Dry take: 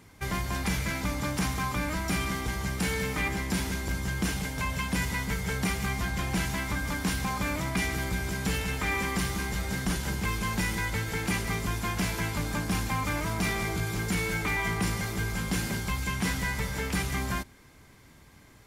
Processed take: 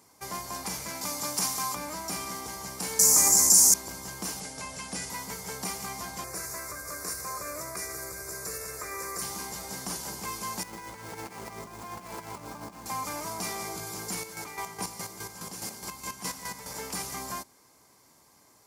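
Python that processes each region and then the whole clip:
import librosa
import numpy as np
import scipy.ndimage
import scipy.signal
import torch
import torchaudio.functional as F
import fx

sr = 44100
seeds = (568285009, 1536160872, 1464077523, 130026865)

y = fx.chain(x, sr, fx.highpass(hz=74.0, slope=12),
    fx.high_shelf(hz=2500.0, db=7.5), at=(1.01, 1.75))
y = fx.chain(y, sr, fx.high_shelf_res(hz=4700.0, db=13.5, q=3.0),
    fx.env_flatten(amount_pct=70), at=(2.99, 3.74))
y = fx.chain(y, sr, fx.steep_lowpass(hz=11000.0, slope=72),
    fx.notch(hz=1000.0, q=5.6), at=(4.4, 5.1))
y = fx.chain(y, sr, fx.quant_float(bits=6),
    fx.fixed_phaser(hz=850.0, stages=6),
    fx.env_flatten(amount_pct=50), at=(6.24, 9.22))
y = fx.chain(y, sr, fx.median_filter(points=9),
    fx.over_compress(threshold_db=-33.0, ratio=-0.5),
    fx.echo_single(ms=127, db=-10.5), at=(10.63, 12.86))
y = fx.chain(y, sr, fx.echo_split(split_hz=550.0, low_ms=286, high_ms=116, feedback_pct=52, wet_db=-9.0),
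    fx.chopper(hz=4.8, depth_pct=60, duty_pct=35), at=(14.16, 16.74))
y = fx.highpass(y, sr, hz=960.0, slope=6)
y = fx.band_shelf(y, sr, hz=2300.0, db=-11.5, octaves=1.7)
y = F.gain(torch.from_numpy(y), 3.0).numpy()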